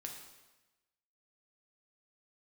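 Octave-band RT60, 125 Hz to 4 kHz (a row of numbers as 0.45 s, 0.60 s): 1.2 s, 1.1 s, 1.1 s, 1.1 s, 1.1 s, 1.0 s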